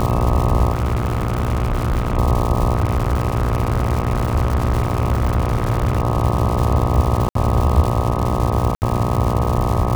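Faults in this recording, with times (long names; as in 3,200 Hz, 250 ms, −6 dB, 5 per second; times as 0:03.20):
mains buzz 60 Hz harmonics 21 −22 dBFS
surface crackle 260 per second −21 dBFS
0:00.73–0:02.18: clipping −15 dBFS
0:02.75–0:06.02: clipping −12.5 dBFS
0:07.29–0:07.35: drop-out 63 ms
0:08.75–0:08.82: drop-out 69 ms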